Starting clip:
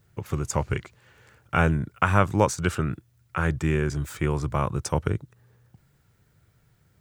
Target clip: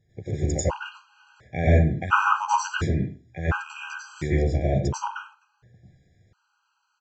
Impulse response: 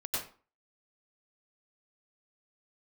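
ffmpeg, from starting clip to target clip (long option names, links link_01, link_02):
-filter_complex "[0:a]aresample=16000,aresample=44100[link_01];[1:a]atrim=start_sample=2205[link_02];[link_01][link_02]afir=irnorm=-1:irlink=0,afftfilt=real='re*gt(sin(2*PI*0.71*pts/sr)*(1-2*mod(floor(b*sr/1024/810),2)),0)':imag='im*gt(sin(2*PI*0.71*pts/sr)*(1-2*mod(floor(b*sr/1024/810),2)),0)':win_size=1024:overlap=0.75"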